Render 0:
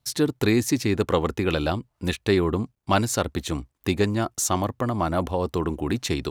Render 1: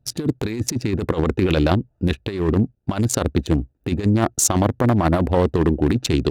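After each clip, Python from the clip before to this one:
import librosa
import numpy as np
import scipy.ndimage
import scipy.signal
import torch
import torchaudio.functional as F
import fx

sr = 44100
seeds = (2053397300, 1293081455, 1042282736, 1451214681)

y = fx.wiener(x, sr, points=41)
y = fx.over_compress(y, sr, threshold_db=-25.0, ratio=-0.5)
y = F.gain(torch.from_numpy(y), 8.0).numpy()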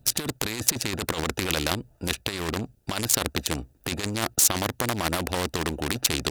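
y = fx.high_shelf(x, sr, hz=3600.0, db=12.0)
y = fx.spectral_comp(y, sr, ratio=2.0)
y = F.gain(torch.from_numpy(y), -7.0).numpy()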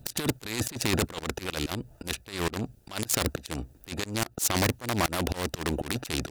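y = fx.auto_swell(x, sr, attack_ms=269.0)
y = 10.0 ** (-21.0 / 20.0) * (np.abs((y / 10.0 ** (-21.0 / 20.0) + 3.0) % 4.0 - 2.0) - 1.0)
y = F.gain(torch.from_numpy(y), 6.0).numpy()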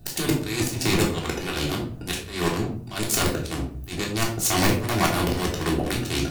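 y = fx.room_shoebox(x, sr, seeds[0], volume_m3=560.0, walls='furnished', distance_m=3.4)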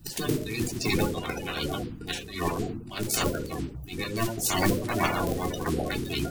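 y = fx.spec_quant(x, sr, step_db=30)
y = F.gain(torch.from_numpy(y), -3.5).numpy()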